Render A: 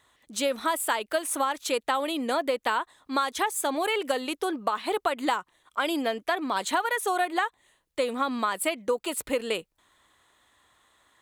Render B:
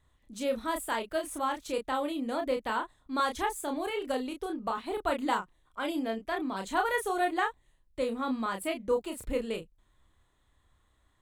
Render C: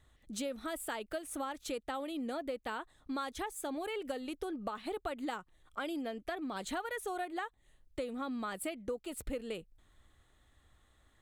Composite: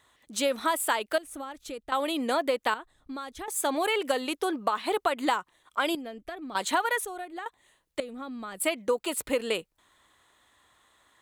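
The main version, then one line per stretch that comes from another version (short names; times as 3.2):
A
1.18–1.92 from C
2.74–3.48 from C
5.95–6.55 from C
7.05–7.46 from C
8–8.6 from C
not used: B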